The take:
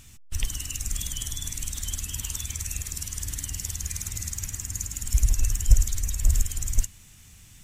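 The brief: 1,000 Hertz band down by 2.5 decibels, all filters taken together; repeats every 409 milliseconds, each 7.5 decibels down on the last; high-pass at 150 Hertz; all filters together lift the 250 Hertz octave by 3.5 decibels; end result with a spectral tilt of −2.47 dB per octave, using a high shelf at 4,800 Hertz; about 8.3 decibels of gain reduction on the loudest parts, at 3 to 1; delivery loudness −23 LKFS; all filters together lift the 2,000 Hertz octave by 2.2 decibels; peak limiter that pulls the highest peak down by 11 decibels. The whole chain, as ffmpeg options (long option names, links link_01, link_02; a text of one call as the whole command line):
ffmpeg -i in.wav -af "highpass=150,equalizer=frequency=250:width_type=o:gain=6.5,equalizer=frequency=1000:width_type=o:gain=-5,equalizer=frequency=2000:width_type=o:gain=5.5,highshelf=frequency=4800:gain=-8,acompressor=threshold=-38dB:ratio=3,alimiter=level_in=8dB:limit=-24dB:level=0:latency=1,volume=-8dB,aecho=1:1:409|818|1227|1636|2045:0.422|0.177|0.0744|0.0312|0.0131,volume=20dB" out.wav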